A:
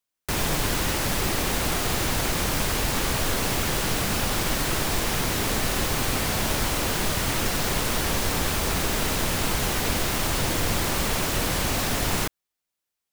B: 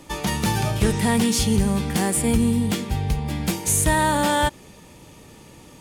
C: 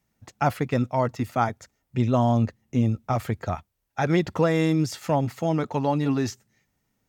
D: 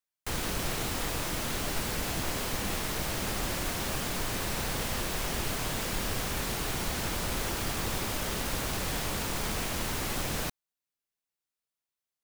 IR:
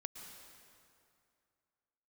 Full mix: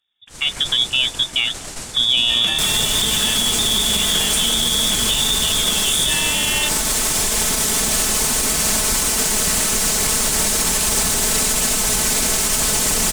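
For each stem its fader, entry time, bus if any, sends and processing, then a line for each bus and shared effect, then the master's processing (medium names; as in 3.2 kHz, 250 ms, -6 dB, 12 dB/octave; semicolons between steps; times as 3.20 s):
+1.5 dB, 2.30 s, bus A, no send, comb filter that takes the minimum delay 4.6 ms; word length cut 10-bit, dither triangular
-1.0 dB, 2.20 s, bus B, send -12 dB, none
-5.0 dB, 0.00 s, bus B, send -19 dB, none
-11.0 dB, 0.00 s, bus A, no send, low-pass 9.3 kHz 12 dB/octave
bus A: 0.0 dB, gate -43 dBFS, range -30 dB; compression 2:1, threshold -32 dBFS, peak gain reduction 7 dB
bus B: 0.0 dB, frequency inversion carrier 3.6 kHz; compression, threshold -25 dBFS, peak gain reduction 11 dB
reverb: on, RT60 2.4 s, pre-delay 102 ms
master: peaking EQ 8.1 kHz +13.5 dB 1.3 oct; level rider gain up to 11 dB; peak limiter -8 dBFS, peak gain reduction 6.5 dB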